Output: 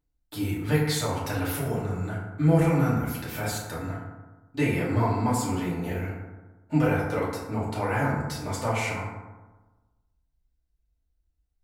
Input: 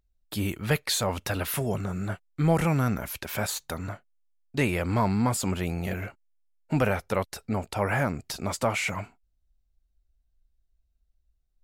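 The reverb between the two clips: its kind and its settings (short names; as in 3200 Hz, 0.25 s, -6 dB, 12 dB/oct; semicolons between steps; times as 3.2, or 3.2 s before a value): FDN reverb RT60 1.2 s, low-frequency decay 1.1×, high-frequency decay 0.4×, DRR -7.5 dB; gain -8.5 dB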